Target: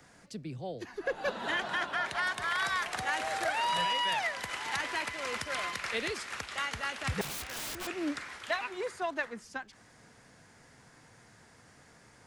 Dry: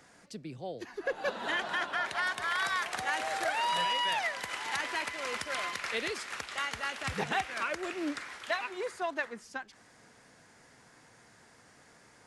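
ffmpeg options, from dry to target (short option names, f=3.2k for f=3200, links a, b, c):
-filter_complex "[0:a]acrossover=split=170|930|3500[a][b][c][d];[a]acontrast=66[e];[e][b][c][d]amix=inputs=4:normalize=0,asettb=1/sr,asplit=3[f][g][h];[f]atrim=end=7.214[i];[g]atrim=start=7.21:end=7.87,asetpts=PTS-STARTPTS,afade=t=in:d=0.004:c=qsin,afade=t=out:st=0.656:d=0.004:c=qsin,aeval=exprs='(mod(50.1*val(0)+1,2)-1)/50.1':c=same[j];[h]atrim=start=7.866[k];[i][j]acrossfade=d=0.004:c1=hsin:c2=qsin[l];[l][k]acrossfade=d=0.004:c1=qsin:c2=hsin"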